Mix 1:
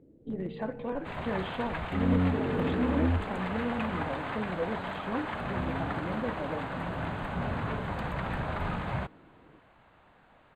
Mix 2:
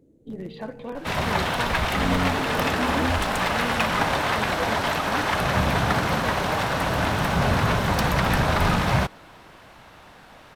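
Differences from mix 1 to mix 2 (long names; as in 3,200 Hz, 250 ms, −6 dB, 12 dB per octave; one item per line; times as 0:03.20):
second sound +11.5 dB
master: remove moving average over 8 samples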